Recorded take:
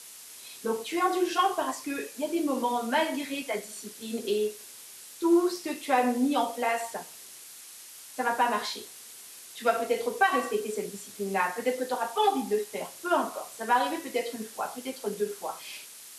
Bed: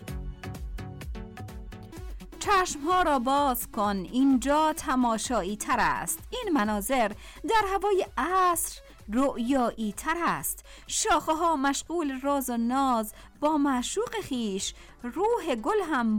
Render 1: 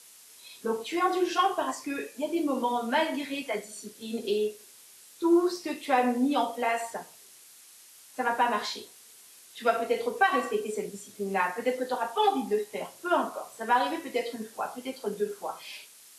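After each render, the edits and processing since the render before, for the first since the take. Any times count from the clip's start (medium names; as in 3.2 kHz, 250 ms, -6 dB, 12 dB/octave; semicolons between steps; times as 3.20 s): noise print and reduce 6 dB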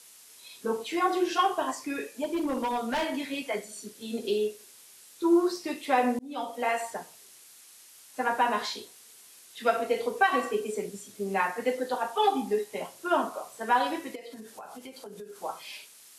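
2.24–3.34 s: overload inside the chain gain 25 dB; 6.19–6.68 s: fade in; 14.15–15.36 s: compression 12:1, threshold -39 dBFS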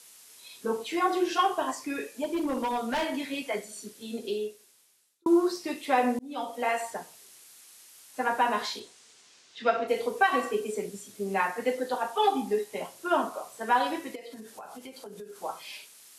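3.82–5.26 s: fade out; 8.79–9.87 s: low-pass 9.1 kHz -> 5.1 kHz 24 dB/octave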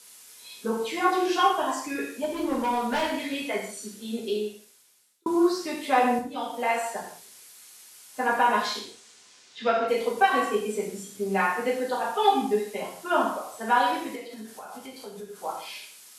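gated-style reverb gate 200 ms falling, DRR -0.5 dB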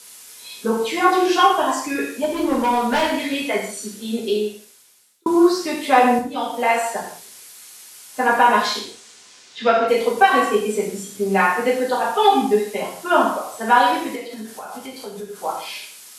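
trim +7.5 dB; peak limiter -2 dBFS, peak gain reduction 2.5 dB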